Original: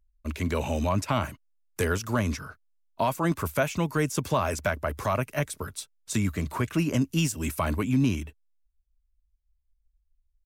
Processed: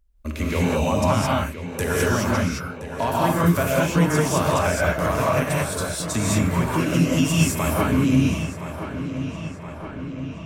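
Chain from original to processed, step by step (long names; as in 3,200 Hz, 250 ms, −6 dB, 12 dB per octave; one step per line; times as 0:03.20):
in parallel at +1 dB: downward compressor, threshold −34 dBFS, peak gain reduction 14 dB
on the sum: feedback echo with a low-pass in the loop 1,021 ms, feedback 68%, low-pass 4,600 Hz, level −11 dB
reverb whose tail is shaped and stops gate 240 ms rising, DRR −5 dB
level −2 dB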